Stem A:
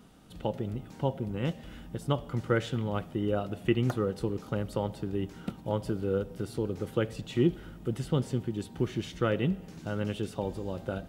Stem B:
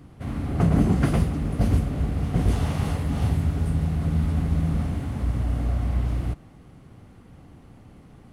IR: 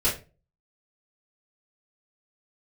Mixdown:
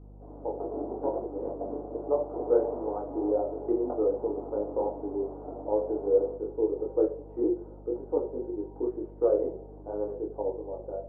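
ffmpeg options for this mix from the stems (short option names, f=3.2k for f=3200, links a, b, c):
-filter_complex "[0:a]flanger=delay=19:depth=3.6:speed=2.6,volume=-1.5dB,asplit=2[a][b];[b]volume=-12dB[c];[1:a]volume=-13dB,asplit=2[d][e];[e]volume=-6.5dB[f];[2:a]atrim=start_sample=2205[g];[c][f]amix=inputs=2:normalize=0[h];[h][g]afir=irnorm=-1:irlink=0[i];[a][d][i]amix=inputs=3:normalize=0,asuperpass=centerf=550:order=8:qfactor=0.92,dynaudnorm=f=380:g=7:m=5dB,aeval=exprs='val(0)+0.00447*(sin(2*PI*50*n/s)+sin(2*PI*2*50*n/s)/2+sin(2*PI*3*50*n/s)/3+sin(2*PI*4*50*n/s)/4+sin(2*PI*5*50*n/s)/5)':c=same"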